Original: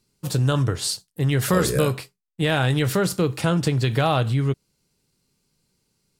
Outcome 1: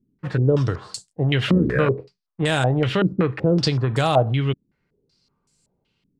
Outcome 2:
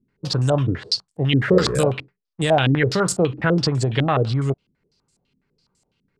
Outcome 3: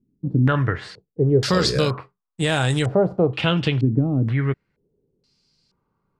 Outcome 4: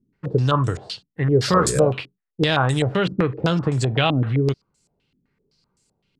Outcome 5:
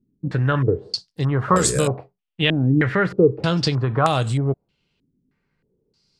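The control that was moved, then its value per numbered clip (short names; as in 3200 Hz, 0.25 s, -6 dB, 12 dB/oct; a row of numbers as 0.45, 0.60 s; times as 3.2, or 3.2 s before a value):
stepped low-pass, rate: 5.3, 12, 2.1, 7.8, 3.2 Hz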